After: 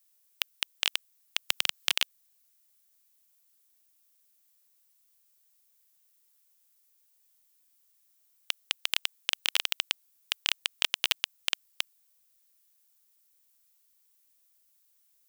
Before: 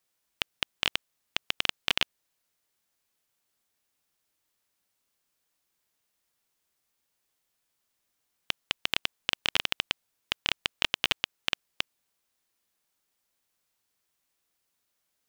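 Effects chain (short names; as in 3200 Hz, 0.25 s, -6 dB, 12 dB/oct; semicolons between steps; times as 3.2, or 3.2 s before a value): RIAA curve recording; 1.49–1.96 three-band squash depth 100%; gain -5 dB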